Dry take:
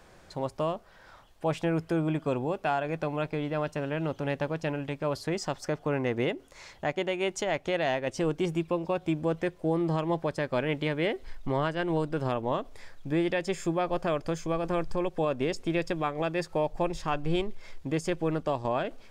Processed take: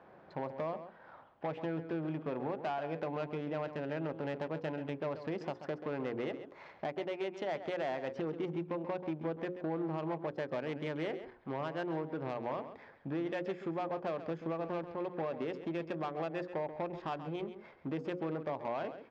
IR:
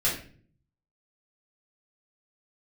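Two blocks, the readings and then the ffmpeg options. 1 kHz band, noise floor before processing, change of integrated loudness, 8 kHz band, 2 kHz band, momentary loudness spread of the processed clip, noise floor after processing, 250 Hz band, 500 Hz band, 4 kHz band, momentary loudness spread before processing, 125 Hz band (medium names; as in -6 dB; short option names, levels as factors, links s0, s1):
-7.5 dB, -55 dBFS, -8.0 dB, under -20 dB, -10.0 dB, 5 LU, -58 dBFS, -8.0 dB, -7.5 dB, -12.5 dB, 4 LU, -10.5 dB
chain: -filter_complex "[0:a]equalizer=f=810:t=o:w=0.77:g=2.5,bandreject=f=60:t=h:w=6,bandreject=f=120:t=h:w=6,bandreject=f=180:t=h:w=6,bandreject=f=240:t=h:w=6,bandreject=f=300:t=h:w=6,bandreject=f=360:t=h:w=6,bandreject=f=420:t=h:w=6,bandreject=f=480:t=h:w=6,bandreject=f=540:t=h:w=6,acompressor=threshold=0.0251:ratio=5,asoftclip=type=hard:threshold=0.0299,adynamicsmooth=sensitivity=5:basefreq=1600,highpass=160,lowpass=4600,asplit=2[s0][s1];[s1]adelay=134.1,volume=0.282,highshelf=f=4000:g=-3.02[s2];[s0][s2]amix=inputs=2:normalize=0"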